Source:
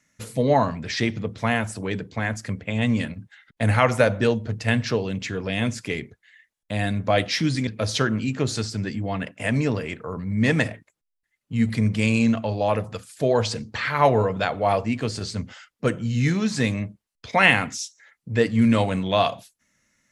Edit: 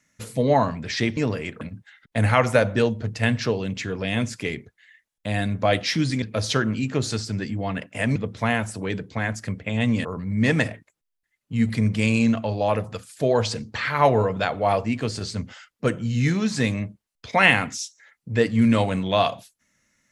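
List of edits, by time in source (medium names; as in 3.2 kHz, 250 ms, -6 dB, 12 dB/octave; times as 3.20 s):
1.17–3.06 s: swap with 9.61–10.05 s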